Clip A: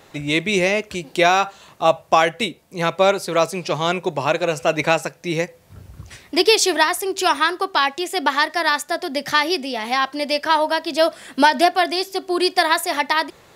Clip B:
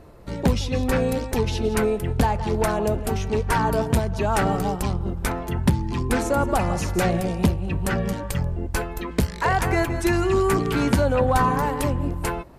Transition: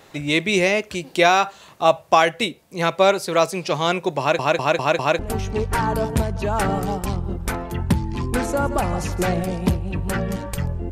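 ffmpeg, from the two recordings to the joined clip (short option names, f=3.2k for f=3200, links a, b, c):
-filter_complex "[0:a]apad=whole_dur=10.91,atrim=end=10.91,asplit=5[a][b][c][d][e];[a]atrim=end=4.392[f];[b]atrim=start=4.188:end=4.392[g];[c]atrim=start=4.188:end=4.392[h];[d]atrim=start=4.188:end=4.392[i];[e]atrim=start=4.188:end=4.392[j];[1:a]atrim=start=2.958:end=8.68[k];[f][g]acrossfade=d=0.004:c1=hsin:c2=hsin[l];[l][h]acrossfade=d=0.004:c1=hsin:c2=hsin[m];[m][i]acrossfade=d=0.004:c1=hsin:c2=hsin[n];[n][j]acrossfade=d=0.004:c1=hsin:c2=hsin[o];[o][k]acrossfade=d=0.004:c1=hsin:c2=hsin"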